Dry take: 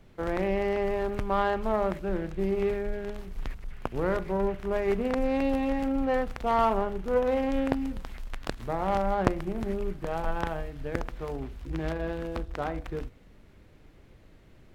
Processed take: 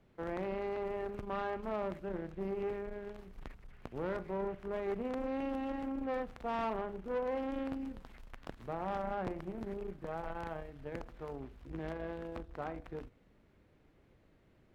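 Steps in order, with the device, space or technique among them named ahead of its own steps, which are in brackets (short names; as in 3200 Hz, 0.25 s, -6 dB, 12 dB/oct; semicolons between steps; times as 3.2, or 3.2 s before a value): tube preamp driven hard (tube stage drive 24 dB, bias 0.55; low shelf 86 Hz -8 dB; high shelf 3100 Hz -7.5 dB); gain -5.5 dB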